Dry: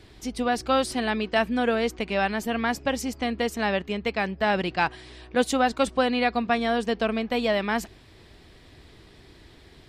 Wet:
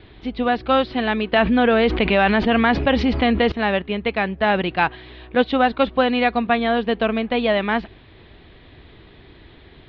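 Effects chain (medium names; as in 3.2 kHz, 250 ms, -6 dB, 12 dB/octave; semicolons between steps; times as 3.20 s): steep low-pass 3.9 kHz 48 dB/octave; 1.32–3.52 s: level flattener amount 70%; trim +5 dB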